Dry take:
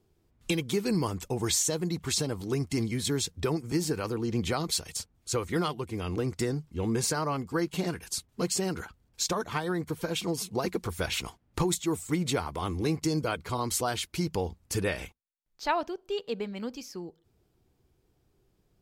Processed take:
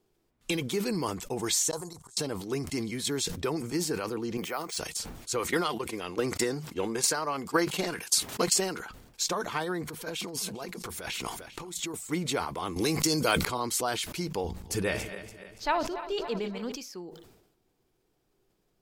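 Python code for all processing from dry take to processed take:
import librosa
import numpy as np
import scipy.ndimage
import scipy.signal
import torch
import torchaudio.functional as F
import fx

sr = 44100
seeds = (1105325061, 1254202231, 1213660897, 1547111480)

y = fx.chain(x, sr, fx.curve_eq(hz=(110.0, 210.0, 1000.0, 2500.0, 4300.0, 8400.0, 15000.0), db=(0, -16, 4, -19, -5, 11, -3)),
    fx.gate_flip(shuts_db=-29.0, range_db=-30), at=(1.71, 2.17))
y = fx.chain(y, sr, fx.highpass(hz=670.0, slope=6),
    fx.peak_eq(hz=3900.0, db=-12.0, octaves=0.63),
    fx.resample_bad(factor=3, down='filtered', up='hold'), at=(4.37, 4.77))
y = fx.chain(y, sr, fx.highpass(hz=62.0, slope=12),
    fx.low_shelf(hz=330.0, db=-8.0),
    fx.transient(attack_db=10, sustain_db=-2), at=(5.39, 8.8))
y = fx.chain(y, sr, fx.over_compress(threshold_db=-36.0, ratio=-1.0),
    fx.echo_single(ms=399, db=-21.5), at=(9.85, 11.94))
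y = fx.chain(y, sr, fx.high_shelf(hz=3500.0, db=11.5),
    fx.clip_hard(threshold_db=-17.5),
    fx.env_flatten(amount_pct=100), at=(12.76, 13.45))
y = fx.chain(y, sr, fx.reverse_delay_fb(ms=143, feedback_pct=68, wet_db=-11.5),
    fx.low_shelf(hz=130.0, db=11.5), at=(14.44, 16.72))
y = fx.peak_eq(y, sr, hz=70.0, db=-14.0, octaves=2.2)
y = fx.sustainer(y, sr, db_per_s=64.0)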